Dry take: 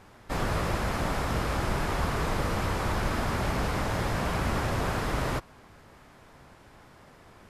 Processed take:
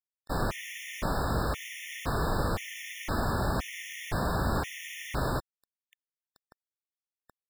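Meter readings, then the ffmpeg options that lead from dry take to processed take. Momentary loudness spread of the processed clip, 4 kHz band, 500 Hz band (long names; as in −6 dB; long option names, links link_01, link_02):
9 LU, −2.5 dB, −3.0 dB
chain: -af "acrusher=bits=6:mix=0:aa=0.000001,afftfilt=real='re*gt(sin(2*PI*0.97*pts/sr)*(1-2*mod(floor(b*sr/1024/1800),2)),0)':imag='im*gt(sin(2*PI*0.97*pts/sr)*(1-2*mod(floor(b*sr/1024/1800),2)),0)':win_size=1024:overlap=0.75"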